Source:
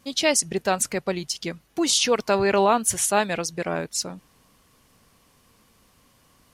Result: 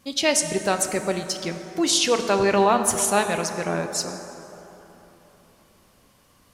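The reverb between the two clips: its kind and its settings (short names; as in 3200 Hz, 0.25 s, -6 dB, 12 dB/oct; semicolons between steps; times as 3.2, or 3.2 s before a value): plate-style reverb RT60 3.7 s, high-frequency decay 0.45×, DRR 6.5 dB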